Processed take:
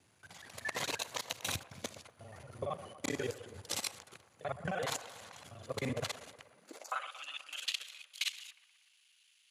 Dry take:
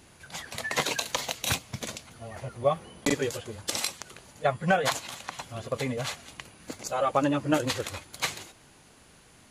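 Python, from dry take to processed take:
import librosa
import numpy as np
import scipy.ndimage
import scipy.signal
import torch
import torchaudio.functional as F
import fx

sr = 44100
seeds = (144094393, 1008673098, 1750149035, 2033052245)

y = fx.local_reverse(x, sr, ms=38.0)
y = fx.highpass(y, sr, hz=63.0, slope=6)
y = fx.low_shelf(y, sr, hz=180.0, db=-6.5)
y = fx.level_steps(y, sr, step_db=17)
y = fx.filter_sweep_highpass(y, sr, from_hz=89.0, to_hz=2900.0, start_s=6.49, end_s=7.09, q=3.1)
y = fx.echo_wet_bandpass(y, sr, ms=120, feedback_pct=62, hz=870.0, wet_db=-13.0)
y = y * librosa.db_to_amplitude(-2.5)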